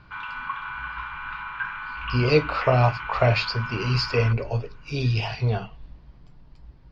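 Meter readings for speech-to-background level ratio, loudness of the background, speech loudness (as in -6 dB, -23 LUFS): 9.0 dB, -33.0 LUFS, -24.0 LUFS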